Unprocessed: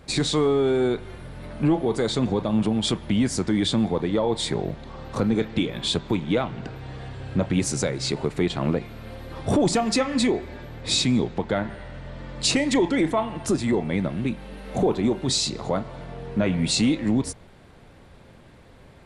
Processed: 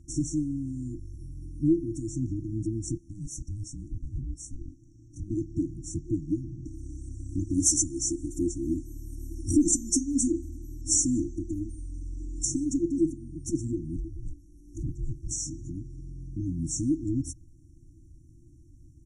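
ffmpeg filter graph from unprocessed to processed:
-filter_complex "[0:a]asettb=1/sr,asplit=3[s0][s1][s2];[s0]atrim=end=2.974[s3];[s1]atrim=start=2.97:end=5.31,asetpts=PTS-STARTPTS,afade=t=in:d=0.004:c=qsin,afade=t=out:st=2.336:d=0.004:c=qsin,highpass=f=310:p=1,aeval=exprs='val(0)*sin(2*PI*410*n/s)':c=same[s4];[s2]atrim=start=5.306[s5];[s3][s4]acrossfade=d=0.004:c1=hsin:c2=qsin[s6];[s6][s5]acrossfade=d=0.004:c1=qsin:c2=hsin,asettb=1/sr,asplit=3[s7][s8][s9];[s7]atrim=end=6.664[s10];[s8]atrim=start=6.66:end=12.45,asetpts=PTS-STARTPTS,afade=t=in:d=0.004:c=qsin,afade=t=out:st=5.786:d=0.004:c=qsin,highshelf=f=3900:g=11.5,aecho=1:1:3.5:0.77,atrim=end_sample=255339[s11];[s9]atrim=start=12.446[s12];[s10][s11]acrossfade=d=0.004:c1=hsin:c2=qsin[s13];[s13][s12]acrossfade=d=0.004:c1=qsin:c2=hsin,asettb=1/sr,asplit=3[s14][s15][s16];[s14]atrim=end=13.964[s17];[s15]atrim=start=13.96:end=15.31,asetpts=PTS-STARTPTS,afade=t=in:d=0.004:c=qsin,afade=t=out:st=1.346:d=0.004:c=qsin,highpass=f=180:p=1,aeval=exprs='val(0)*sin(2*PI*240*n/s)':c=same[s18];[s16]atrim=start=15.306[s19];[s17][s18]acrossfade=d=0.004:c1=hsin:c2=qsin[s20];[s20][s19]acrossfade=d=0.004:c1=qsin:c2=hsin,afftfilt=real='re*(1-between(b*sr/4096,350,5500))':imag='im*(1-between(b*sr/4096,350,5500))':win_size=4096:overlap=0.75,lowpass=7600,aecho=1:1:2.4:0.89,volume=0.631"

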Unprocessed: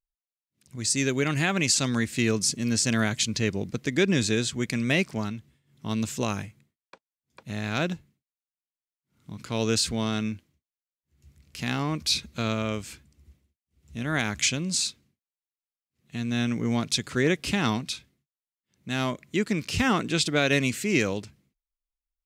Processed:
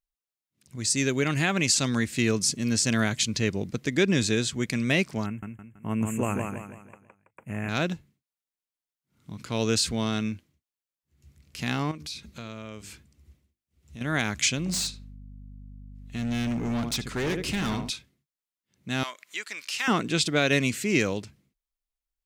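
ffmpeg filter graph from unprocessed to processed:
-filter_complex "[0:a]asettb=1/sr,asplit=3[s0][s1][s2];[s0]atrim=end=5.264[s3];[s1]atrim=start=5.26:end=7.69,asetpts=PTS-STARTPTS,afade=t=in:d=0.004:c=qsin,afade=t=out:st=2.426:d=0.004:c=qsin,agate=range=0.0224:threshold=0.00141:ratio=3:release=100:detection=peak,asuperstop=centerf=4500:order=8:qfactor=0.99,aecho=1:1:164|328|492|656|820:0.596|0.238|0.0953|0.0381|0.0152,atrim=end_sample=107163[s4];[s2]atrim=start=7.686[s5];[s3][s4]acrossfade=d=0.004:c1=hsin:c2=qsin[s6];[s6][s5]acrossfade=d=0.004:c1=qsin:c2=hsin,asettb=1/sr,asplit=3[s7][s8][s9];[s7]atrim=end=11.914[s10];[s8]atrim=start=11.91:end=14.01,asetpts=PTS-STARTPTS,afade=t=in:d=0.004:c=qsin,afade=t=out:st=2.096:d=0.004:c=qsin,bandreject=f=50:t=h:w=6,bandreject=f=100:t=h:w=6,bandreject=f=150:t=h:w=6,bandreject=f=200:t=h:w=6,bandreject=f=250:t=h:w=6,bandreject=f=300:t=h:w=6,bandreject=f=350:t=h:w=6,bandreject=f=400:t=h:w=6,bandreject=f=450:t=h:w=6,acompressor=threshold=0.01:ratio=2.5:attack=3.2:release=140:knee=1:detection=peak[s11];[s9]atrim=start=14.006[s12];[s10][s11]acrossfade=d=0.004:c1=hsin:c2=qsin[s13];[s13][s12]acrossfade=d=0.004:c1=qsin:c2=hsin,asettb=1/sr,asplit=3[s14][s15][s16];[s14]atrim=end=14.584[s17];[s15]atrim=start=14.58:end=17.9,asetpts=PTS-STARTPTS,afade=t=in:d=0.004:c=qsin,afade=t=out:st=3.316:d=0.004:c=qsin,asplit=2[s18][s19];[s19]adelay=76,lowpass=f=1200:p=1,volume=0.398,asplit=2[s20][s21];[s21]adelay=76,lowpass=f=1200:p=1,volume=0.3,asplit=2[s22][s23];[s23]adelay=76,lowpass=f=1200:p=1,volume=0.3,asplit=2[s24][s25];[s25]adelay=76,lowpass=f=1200:p=1,volume=0.3[s26];[s18][s20][s22][s24][s26]amix=inputs=5:normalize=0,atrim=end_sample=146412,asoftclip=type=hard:threshold=0.0562,aeval=exprs='val(0)+0.00708*(sin(2*PI*50*n/s)+sin(2*PI*2*50*n/s)/2+sin(2*PI*3*50*n/s)/3+sin(2*PI*4*50*n/s)/4+sin(2*PI*5*50*n/s)/5)':c=same[s27];[s16]atrim=start=17.896[s28];[s17][s27]acrossfade=d=0.004:c1=hsin:c2=qsin[s29];[s29][s28]acrossfade=d=0.004:c1=qsin:c2=hsin,asettb=1/sr,asplit=3[s30][s31][s32];[s30]atrim=end=19.034[s33];[s31]atrim=start=19.03:end=19.88,asetpts=PTS-STARTPTS,afade=t=in:d=0.004:c=qsin,afade=t=out:st=0.846:d=0.004:c=qsin,highpass=1200,acompressor=mode=upward:threshold=0.01:ratio=2.5:attack=3.2:release=140:knee=2.83:detection=peak[s34];[s32]atrim=start=19.876[s35];[s33][s34]acrossfade=d=0.004:c1=hsin:c2=qsin[s36];[s36][s35]acrossfade=d=0.004:c1=qsin:c2=hsin"

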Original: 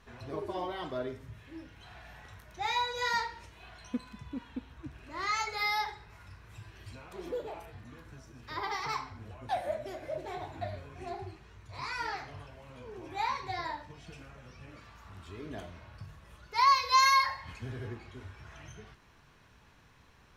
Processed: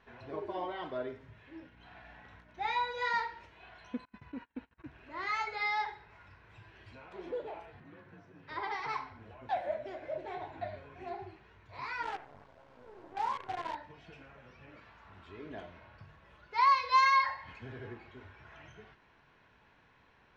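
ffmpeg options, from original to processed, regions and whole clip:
-filter_complex "[0:a]asettb=1/sr,asplit=3[s0][s1][s2];[s0]atrim=end=1.604[s3];[s1]atrim=start=1.6:end=2.91,asetpts=PTS-STARTPTS,afade=t=in:d=0.004:c=qsin,afade=t=out:st=1.306:d=0.004:c=qsin,agate=range=0.0224:threshold=0.00282:ratio=3:release=100:detection=peak,highshelf=f=8300:g=-3.5,aeval=exprs='val(0)+0.00224*(sin(2*PI*60*n/s)+sin(2*PI*2*60*n/s)/2+sin(2*PI*3*60*n/s)/3+sin(2*PI*4*60*n/s)/4+sin(2*PI*5*60*n/s)/5)':c=same[s4];[s2]atrim=start=2.906[s5];[s3][s4]acrossfade=d=0.004:c1=hsin:c2=qsin[s6];[s6][s5]acrossfade=d=0.004:c1=qsin:c2=hsin,asettb=1/sr,asplit=3[s7][s8][s9];[s7]atrim=end=4.054[s10];[s8]atrim=start=4.05:end=4.89,asetpts=PTS-STARTPTS,afade=t=in:d=0.004:c=qsin,afade=t=out:st=0.836:d=0.004:c=qsin,bandreject=f=3400:w=7.9,agate=range=0.0316:threshold=0.00316:ratio=16:release=100:detection=peak,equalizer=f=1800:w=1.3:g=3[s11];[s9]atrim=start=4.886[s12];[s10][s11]acrossfade=d=0.004:c1=hsin:c2=qsin[s13];[s13][s12]acrossfade=d=0.004:c1=qsin:c2=hsin,asettb=1/sr,asplit=3[s14][s15][s16];[s14]atrim=end=7.804[s17];[s15]atrim=start=7.8:end=8.49,asetpts=PTS-STARTPTS,afade=t=in:d=0.004:c=qsin,afade=t=out:st=0.686:d=0.004:c=qsin,lowpass=f=2800:p=1,afreqshift=41[s18];[s16]atrim=start=8.486[s19];[s17][s18]acrossfade=d=0.004:c1=hsin:c2=qsin[s20];[s20][s19]acrossfade=d=0.004:c1=qsin:c2=hsin,asettb=1/sr,asplit=3[s21][s22][s23];[s21]atrim=end=12.034[s24];[s22]atrim=start=12.03:end=13.75,asetpts=PTS-STARTPTS,afade=t=in:d=0.004:c=qsin,afade=t=out:st=1.716:d=0.004:c=qsin,lowpass=f=1400:w=0.5412,lowpass=f=1400:w=1.3066,equalizer=f=92:w=0.65:g=-2,acrusher=bits=7:dc=4:mix=0:aa=0.000001[s25];[s23]atrim=start=13.746[s26];[s24][s25]acrossfade=d=0.004:c1=hsin:c2=qsin[s27];[s27][s26]acrossfade=d=0.004:c1=qsin:c2=hsin,lowpass=2800,lowshelf=f=190:g=-11,bandreject=f=1200:w=11"

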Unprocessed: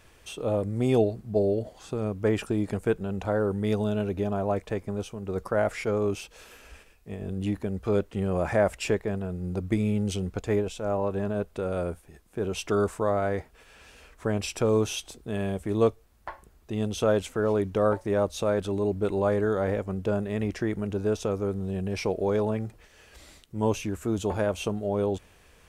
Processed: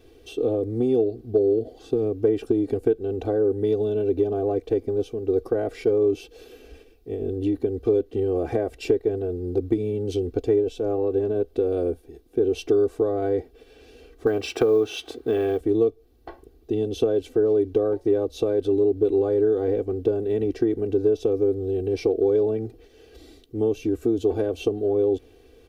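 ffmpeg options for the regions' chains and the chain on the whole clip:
-filter_complex "[0:a]asettb=1/sr,asplit=3[s0][s1][s2];[s0]atrim=end=14.264[s3];[s1]atrim=start=14.26:end=15.61,asetpts=PTS-STARTPTS,afade=t=in:d=0.004:c=qsin,afade=t=out:st=1.346:d=0.004:c=qsin,highpass=72,equalizer=f=1400:w=0.56:g=14.5,acrusher=bits=7:mode=log:mix=0:aa=0.000001[s4];[s2]atrim=start=15.606[s5];[s3][s4]acrossfade=d=0.004:c1=hsin:c2=qsin[s6];[s6][s5]acrossfade=d=0.004:c1=qsin:c2=hsin,equalizer=f=250:t=o:w=1:g=11,equalizer=f=500:t=o:w=1:g=10,equalizer=f=1000:t=o:w=1:g=-9,equalizer=f=2000:t=o:w=1:g=-6,equalizer=f=4000:t=o:w=1:g=4,equalizer=f=8000:t=o:w=1:g=-10,acompressor=threshold=0.126:ratio=6,aecho=1:1:2.6:0.93,volume=0.75"

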